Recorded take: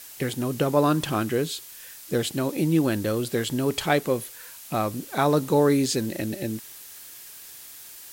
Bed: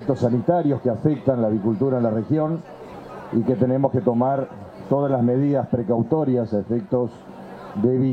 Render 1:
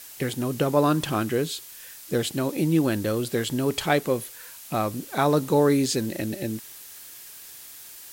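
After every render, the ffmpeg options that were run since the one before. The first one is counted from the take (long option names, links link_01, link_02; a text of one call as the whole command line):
ffmpeg -i in.wav -af anull out.wav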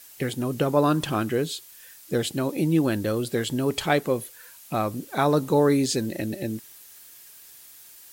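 ffmpeg -i in.wav -af "afftdn=noise_reduction=6:noise_floor=-44" out.wav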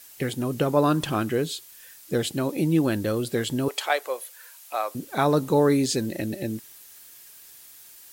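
ffmpeg -i in.wav -filter_complex "[0:a]asettb=1/sr,asplit=3[link_01][link_02][link_03];[link_01]atrim=end=3.684[link_04];[link_02]atrim=start=3.68:end=4.95,asetpts=PTS-STARTPTS,afade=type=in:duration=0.004:curve=qsin,afade=type=out:start_time=1.266:duration=0.004:curve=qsin,highpass=frequency=540:width=0.5412,highpass=frequency=540:width=1.3066[link_05];[link_03]atrim=start=4.946[link_06];[link_04][link_05]acrossfade=duration=0.004:curve1=hsin:curve2=qsin[link_07];[link_07][link_06]acrossfade=duration=0.004:curve1=qsin:curve2=hsin" out.wav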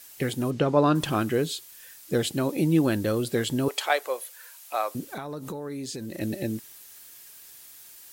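ffmpeg -i in.wav -filter_complex "[0:a]asplit=3[link_01][link_02][link_03];[link_01]afade=type=out:start_time=0.5:duration=0.02[link_04];[link_02]lowpass=5100,afade=type=in:start_time=0.5:duration=0.02,afade=type=out:start_time=0.94:duration=0.02[link_05];[link_03]afade=type=in:start_time=0.94:duration=0.02[link_06];[link_04][link_05][link_06]amix=inputs=3:normalize=0,asplit=3[link_07][link_08][link_09];[link_07]afade=type=out:start_time=5.07:duration=0.02[link_10];[link_08]acompressor=threshold=-31dB:ratio=16:attack=3.2:release=140:knee=1:detection=peak,afade=type=in:start_time=5.07:duration=0.02,afade=type=out:start_time=6.2:duration=0.02[link_11];[link_09]afade=type=in:start_time=6.2:duration=0.02[link_12];[link_10][link_11][link_12]amix=inputs=3:normalize=0" out.wav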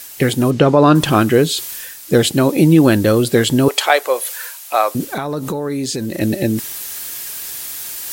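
ffmpeg -i in.wav -af "areverse,acompressor=mode=upward:threshold=-31dB:ratio=2.5,areverse,alimiter=level_in=12.5dB:limit=-1dB:release=50:level=0:latency=1" out.wav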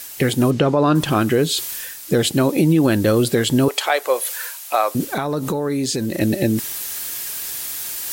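ffmpeg -i in.wav -af "alimiter=limit=-7dB:level=0:latency=1:release=216" out.wav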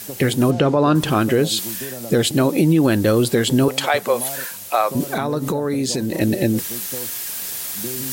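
ffmpeg -i in.wav -i bed.wav -filter_complex "[1:a]volume=-13dB[link_01];[0:a][link_01]amix=inputs=2:normalize=0" out.wav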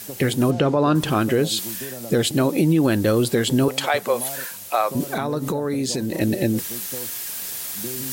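ffmpeg -i in.wav -af "volume=-2.5dB" out.wav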